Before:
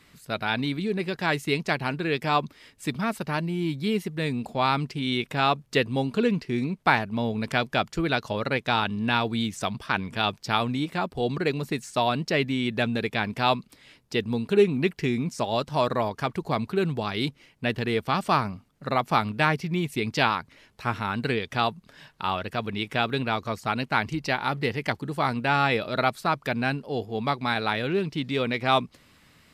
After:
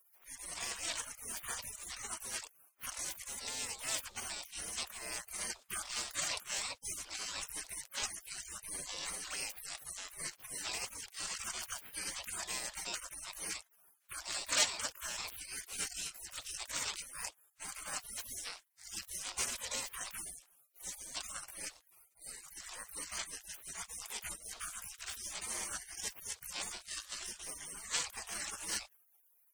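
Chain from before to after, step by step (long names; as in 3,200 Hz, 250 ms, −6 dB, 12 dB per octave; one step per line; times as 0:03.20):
pitch-shifted copies added +12 semitones −2 dB
flat-topped bell 5,300 Hz +12 dB
gate on every frequency bin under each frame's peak −30 dB weak
level +4.5 dB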